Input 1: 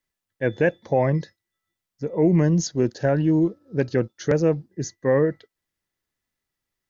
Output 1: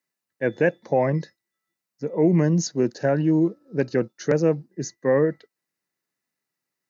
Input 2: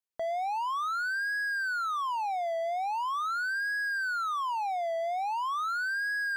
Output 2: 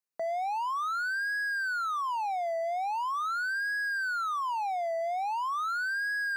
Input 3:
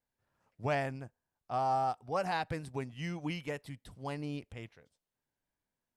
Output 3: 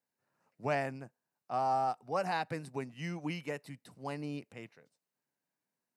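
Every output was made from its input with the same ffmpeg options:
-af "highpass=f=140:w=0.5412,highpass=f=140:w=1.3066,bandreject=f=3300:w=5.9"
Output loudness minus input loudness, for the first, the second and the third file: -0.5 LU, 0.0 LU, -0.5 LU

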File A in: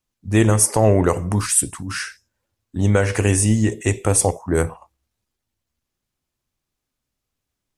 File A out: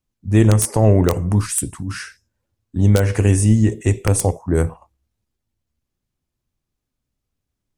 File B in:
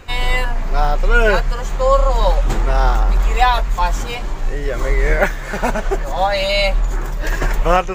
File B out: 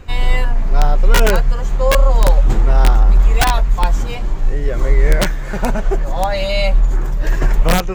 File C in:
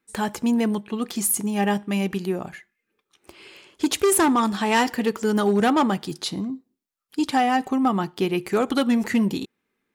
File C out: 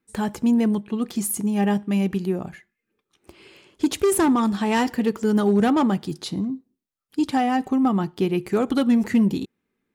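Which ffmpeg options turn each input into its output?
-af "aeval=exprs='(mod(1.58*val(0)+1,2)-1)/1.58':c=same,lowshelf=f=390:g=9.5,volume=0.596"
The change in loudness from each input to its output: +1.5 LU, +1.5 LU, +0.5 LU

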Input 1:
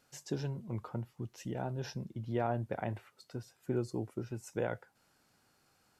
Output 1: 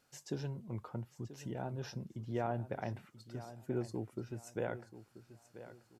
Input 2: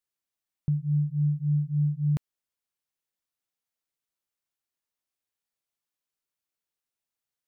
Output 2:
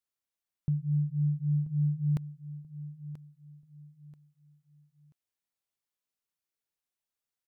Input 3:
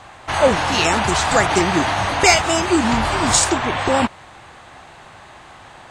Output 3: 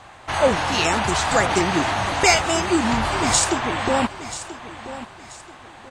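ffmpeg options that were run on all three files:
-af "aecho=1:1:984|1968|2952:0.2|0.0619|0.0192,volume=0.708"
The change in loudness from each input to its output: -3.0 LU, -4.0 LU, -3.0 LU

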